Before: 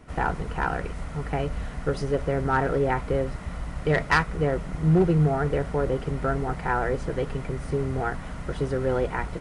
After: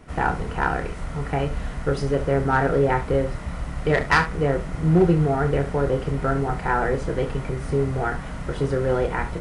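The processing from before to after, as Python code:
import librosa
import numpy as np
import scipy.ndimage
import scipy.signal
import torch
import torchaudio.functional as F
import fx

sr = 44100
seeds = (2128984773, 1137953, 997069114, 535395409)

y = fx.room_early_taps(x, sr, ms=(29, 70), db=(-7.5, -13.5))
y = y * librosa.db_to_amplitude(2.5)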